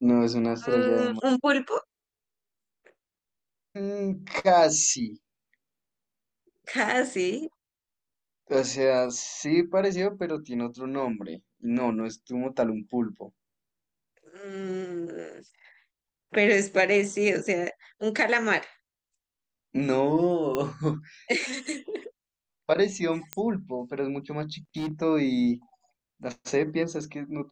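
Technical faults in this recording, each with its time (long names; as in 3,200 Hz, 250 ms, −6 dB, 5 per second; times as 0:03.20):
0:20.55: click −14 dBFS
0:23.33: click −13 dBFS
0:24.76–0:24.91: clipping −27 dBFS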